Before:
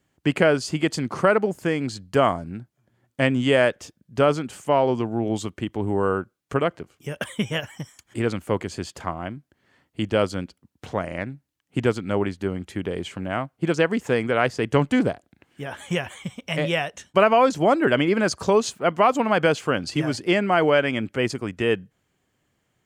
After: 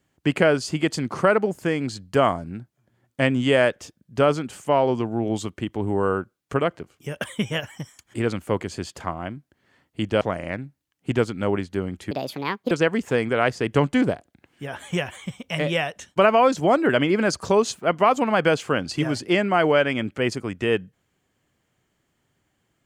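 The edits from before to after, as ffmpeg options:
-filter_complex "[0:a]asplit=4[a][b][c][d];[a]atrim=end=10.212[e];[b]atrim=start=10.888:end=12.794[f];[c]atrim=start=12.79:end=13.69,asetpts=PTS-STARTPTS,asetrate=66150,aresample=44100[g];[d]atrim=start=13.686[h];[e][f]acrossfade=d=0.004:c1=hsin:c2=hsin[i];[i][g]acrossfade=d=0.004:c1=hsin:c2=hsin[j];[j][h]acrossfade=d=0.004:c1=hsin:c2=hsin"

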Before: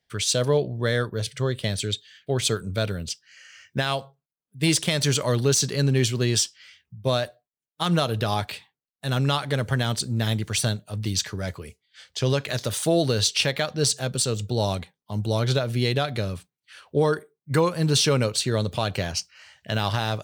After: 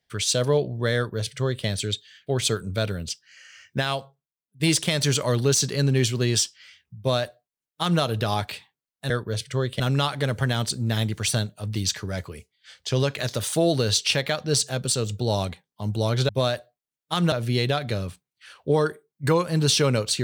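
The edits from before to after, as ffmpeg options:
-filter_complex "[0:a]asplit=6[a][b][c][d][e][f];[a]atrim=end=4.6,asetpts=PTS-STARTPTS,afade=t=out:st=3.82:d=0.78:silence=0.298538[g];[b]atrim=start=4.6:end=9.102,asetpts=PTS-STARTPTS,afade=t=in:d=0.004:c=hsin:silence=0.298538[h];[c]atrim=start=0.958:end=1.662[i];[d]atrim=start=9.098:end=15.592[j];[e]atrim=start=6.978:end=8.012[k];[f]atrim=start=15.588[l];[g][h]concat=n=2:v=0:a=1[m];[m][i]acrossfade=d=0.004:c1=hsin:c2=hsin[n];[n][j]acrossfade=d=0.004:c1=hsin:c2=hsin[o];[o][k]acrossfade=d=0.004:c1=hsin:c2=hsin[p];[p][l]acrossfade=d=0.004:c1=hsin:c2=hsin"

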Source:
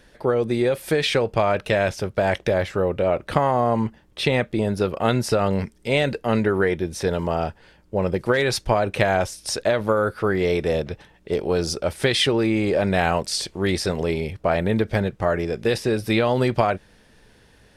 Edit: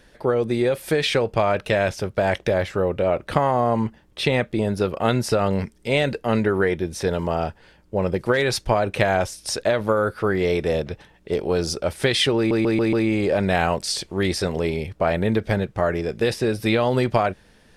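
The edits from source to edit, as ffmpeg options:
-filter_complex "[0:a]asplit=5[a][b][c][d][e];[a]atrim=end=12.512[f];[b]atrim=start=12.368:end=12.512[g];[c]atrim=start=12.368:end=12.512[h];[d]atrim=start=12.368:end=12.512[i];[e]atrim=start=12.368[j];[f][g]acrossfade=d=0.004:c1=hsin:c2=hsin[k];[k][h]acrossfade=d=0.004:c1=hsin:c2=hsin[l];[l][i]acrossfade=d=0.004:c1=hsin:c2=hsin[m];[m][j]acrossfade=d=0.004:c1=hsin:c2=hsin"

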